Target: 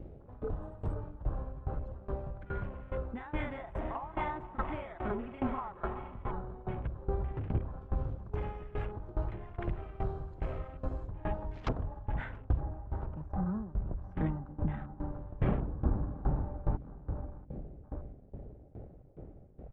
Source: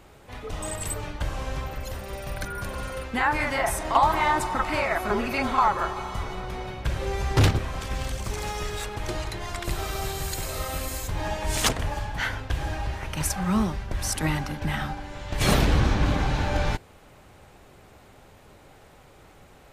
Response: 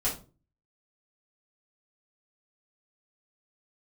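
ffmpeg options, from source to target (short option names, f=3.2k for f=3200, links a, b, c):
-af "asetnsamples=n=441:p=0,asendcmd='12.6 lowpass f 1700',lowpass=2.9k,aecho=1:1:686|1372|2058|2744:0.158|0.0666|0.028|0.0117,acompressor=threshold=-43dB:ratio=2,afwtdn=0.00562,tiltshelf=f=740:g=5.5,aeval=exprs='val(0)*pow(10,-19*if(lt(mod(2.4*n/s,1),2*abs(2.4)/1000),1-mod(2.4*n/s,1)/(2*abs(2.4)/1000),(mod(2.4*n/s,1)-2*abs(2.4)/1000)/(1-2*abs(2.4)/1000))/20)':c=same,volume=5dB"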